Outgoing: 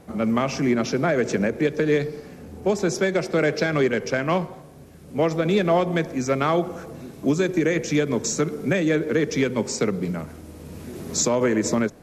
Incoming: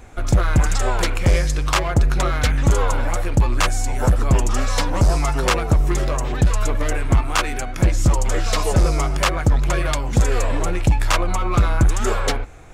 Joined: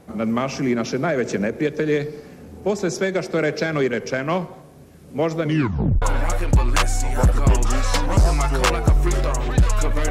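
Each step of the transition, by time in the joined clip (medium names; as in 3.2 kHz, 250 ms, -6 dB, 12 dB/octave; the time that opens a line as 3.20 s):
outgoing
5.42 s: tape stop 0.60 s
6.02 s: go over to incoming from 2.86 s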